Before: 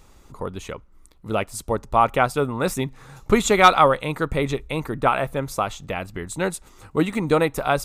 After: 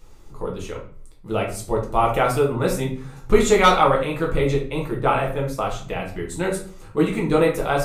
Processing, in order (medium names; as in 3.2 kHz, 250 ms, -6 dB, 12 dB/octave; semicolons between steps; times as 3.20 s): 1.88–2.51 s: treble shelf 7.7 kHz +6.5 dB; 4.68–5.70 s: expander -27 dBFS; simulated room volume 42 m³, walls mixed, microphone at 0.84 m; trim -4.5 dB